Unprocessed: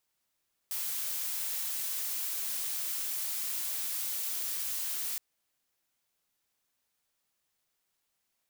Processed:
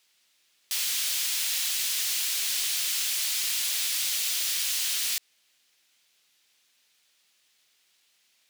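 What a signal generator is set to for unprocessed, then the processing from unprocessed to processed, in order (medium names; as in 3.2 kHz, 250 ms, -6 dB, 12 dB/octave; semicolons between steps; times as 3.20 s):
noise blue, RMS -34.5 dBFS 4.47 s
frequency weighting D; in parallel at +1.5 dB: peak limiter -29.5 dBFS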